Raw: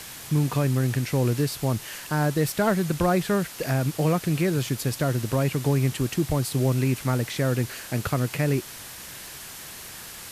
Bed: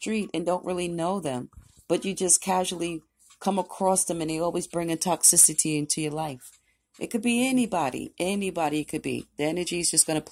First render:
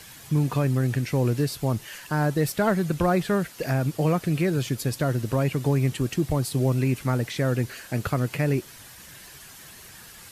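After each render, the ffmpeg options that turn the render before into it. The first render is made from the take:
ffmpeg -i in.wav -af "afftdn=noise_reduction=8:noise_floor=-41" out.wav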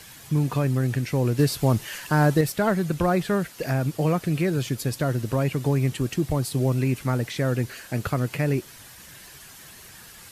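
ffmpeg -i in.wav -filter_complex "[0:a]asplit=3[link_01][link_02][link_03];[link_01]atrim=end=1.392[link_04];[link_02]atrim=start=1.388:end=2.412,asetpts=PTS-STARTPTS,volume=4.5dB[link_05];[link_03]atrim=start=2.408[link_06];[link_04][link_05]acrossfade=duration=0.004:curve1=hsin:curve2=hsin[link_07];[link_07][link_06]acrossfade=duration=0.004:curve1=hsin:curve2=hsin" out.wav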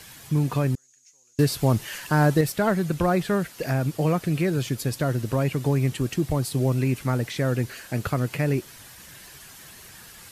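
ffmpeg -i in.wav -filter_complex "[0:a]asettb=1/sr,asplit=3[link_01][link_02][link_03];[link_01]atrim=end=0.754[link_04];[link_02]atrim=start=0.75:end=1.39,asetpts=PTS-STARTPTS,afade=type=in:duration=0.004:curve=qsin,afade=type=out:start_time=0.636:duration=0.004:curve=qsin,bandpass=frequency=6600:width_type=q:width=15[link_05];[link_03]atrim=start=1.386[link_06];[link_04][link_05]acrossfade=duration=0.004:curve1=hsin:curve2=qsin[link_07];[link_07][link_06]acrossfade=duration=0.004:curve1=qsin:curve2=hsin" out.wav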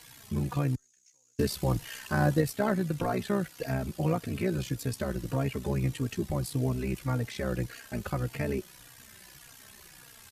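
ffmpeg -i in.wav -filter_complex "[0:a]tremolo=f=63:d=0.824,asplit=2[link_01][link_02];[link_02]adelay=3.7,afreqshift=-1.7[link_03];[link_01][link_03]amix=inputs=2:normalize=1" out.wav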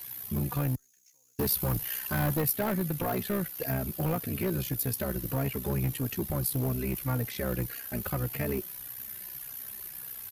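ffmpeg -i in.wav -af "asoftclip=type=hard:threshold=-24.5dB,aexciter=amount=6.1:drive=8.2:freq=11000" out.wav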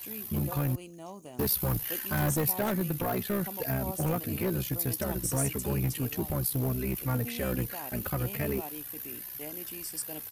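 ffmpeg -i in.wav -i bed.wav -filter_complex "[1:a]volume=-17dB[link_01];[0:a][link_01]amix=inputs=2:normalize=0" out.wav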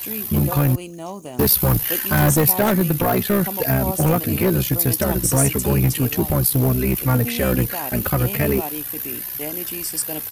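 ffmpeg -i in.wav -af "volume=12dB" out.wav

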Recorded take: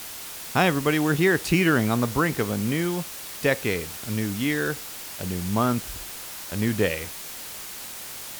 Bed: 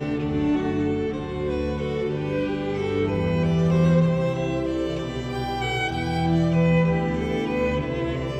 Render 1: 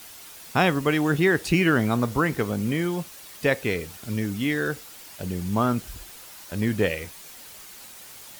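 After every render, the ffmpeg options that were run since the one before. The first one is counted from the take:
ffmpeg -i in.wav -af "afftdn=noise_reduction=8:noise_floor=-38" out.wav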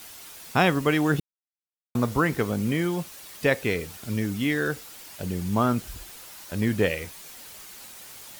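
ffmpeg -i in.wav -filter_complex "[0:a]asplit=3[link_01][link_02][link_03];[link_01]atrim=end=1.2,asetpts=PTS-STARTPTS,afade=type=out:start_time=1.196:duration=0.004:curve=hsin[link_04];[link_02]atrim=start=1.2:end=1.95,asetpts=PTS-STARTPTS,volume=0[link_05];[link_03]atrim=start=1.95,asetpts=PTS-STARTPTS,afade=type=in:duration=0.004:curve=hsin[link_06];[link_04][link_05][link_06]concat=n=3:v=0:a=1" out.wav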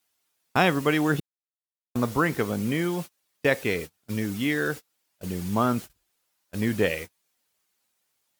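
ffmpeg -i in.wav -af "agate=range=-31dB:threshold=-32dB:ratio=16:detection=peak,lowshelf=frequency=83:gain=-8.5" out.wav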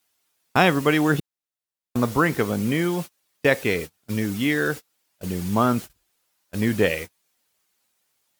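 ffmpeg -i in.wav -af "volume=3.5dB" out.wav

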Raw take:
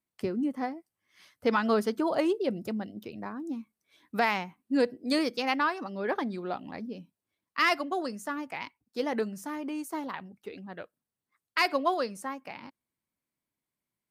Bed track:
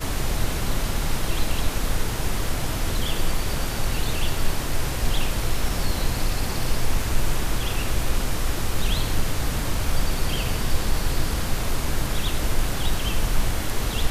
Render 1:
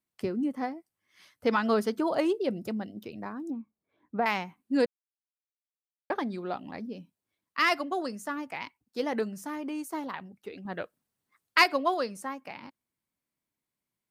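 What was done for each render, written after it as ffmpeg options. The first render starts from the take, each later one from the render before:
ffmpeg -i in.wav -filter_complex "[0:a]asettb=1/sr,asplit=3[link_01][link_02][link_03];[link_01]atrim=end=3.504[link_04];[link_02]atrim=start=3.5:end=4.26,asetpts=PTS-STARTPTS,afade=type=in:duration=0.004:curve=qsin,afade=type=out:start_time=0.756:duration=0.004:curve=qsin,lowpass=1000[link_05];[link_03]atrim=start=4.256[link_06];[link_04][link_05]acrossfade=duration=0.004:curve1=hsin:curve2=qsin[link_07];[link_07][link_06]acrossfade=duration=0.004:curve1=qsin:curve2=hsin,asettb=1/sr,asplit=3[link_08][link_09][link_10];[link_08]atrim=end=10.654[link_11];[link_09]atrim=start=10.65:end=11.64,asetpts=PTS-STARTPTS,afade=type=in:duration=0.004:curve=qsin,afade=type=out:start_time=0.986:duration=0.004:curve=qsin,acontrast=49[link_12];[link_10]atrim=start=11.636[link_13];[link_11][link_12]acrossfade=duration=0.004:curve1=hsin:curve2=qsin[link_14];[link_14][link_13]acrossfade=duration=0.004:curve1=qsin:curve2=hsin,asplit=3[link_15][link_16][link_17];[link_15]atrim=end=4.86,asetpts=PTS-STARTPTS,afade=type=out:start_time=4.856:duration=0.004:curve=hsin[link_18];[link_16]atrim=start=4.86:end=6.1,asetpts=PTS-STARTPTS,volume=0[link_19];[link_17]atrim=start=6.1,asetpts=PTS-STARTPTS,afade=type=in:duration=0.004:curve=hsin[link_20];[link_18][link_19][link_20]concat=n=3:v=0:a=1" out.wav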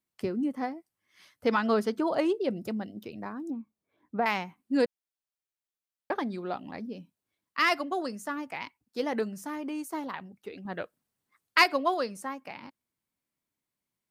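ffmpeg -i in.wav -filter_complex "[0:a]asettb=1/sr,asplit=3[link_01][link_02][link_03];[link_01]atrim=end=1.614[link_04];[link_02]atrim=start=1.61:end=2.57,asetpts=PTS-STARTPTS,afade=type=in:duration=0.004:curve=qsin,afade=type=out:start_time=0.956:duration=0.004:curve=qsin,highshelf=frequency=9100:gain=-7[link_05];[link_03]atrim=start=2.566[link_06];[link_04][link_05]acrossfade=duration=0.004:curve1=hsin:curve2=qsin[link_07];[link_07][link_06]acrossfade=duration=0.004:curve1=qsin:curve2=hsin" out.wav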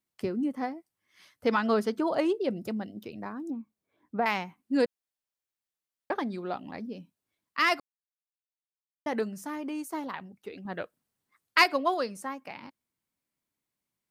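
ffmpeg -i in.wav -filter_complex "[0:a]asplit=3[link_01][link_02][link_03];[link_01]atrim=end=7.8,asetpts=PTS-STARTPTS,afade=type=out:start_time=7.796:duration=0.004:curve=hsin[link_04];[link_02]atrim=start=7.8:end=9.06,asetpts=PTS-STARTPTS,volume=0[link_05];[link_03]atrim=start=9.06,asetpts=PTS-STARTPTS,afade=type=in:duration=0.004:curve=hsin[link_06];[link_04][link_05][link_06]concat=n=3:v=0:a=1" out.wav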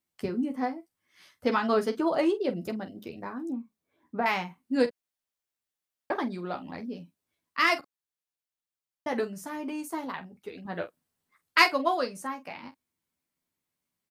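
ffmpeg -i in.wav -af "aecho=1:1:12|46:0.531|0.224" out.wav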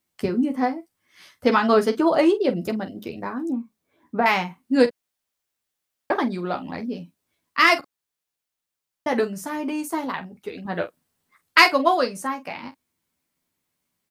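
ffmpeg -i in.wav -af "volume=7.5dB,alimiter=limit=-1dB:level=0:latency=1" out.wav

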